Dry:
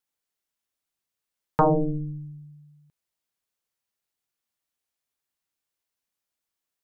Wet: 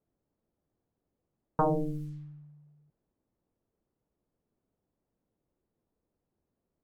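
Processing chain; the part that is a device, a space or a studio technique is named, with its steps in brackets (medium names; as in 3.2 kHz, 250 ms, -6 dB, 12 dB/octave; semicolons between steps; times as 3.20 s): cassette deck with a dynamic noise filter (white noise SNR 27 dB; level-controlled noise filter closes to 360 Hz, open at -25.5 dBFS); trim -7 dB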